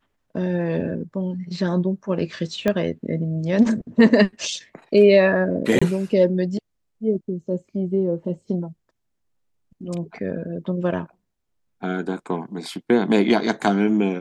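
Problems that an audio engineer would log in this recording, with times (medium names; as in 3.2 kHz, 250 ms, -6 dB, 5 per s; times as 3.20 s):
2.68 s: pop -9 dBFS
5.79–5.82 s: dropout 25 ms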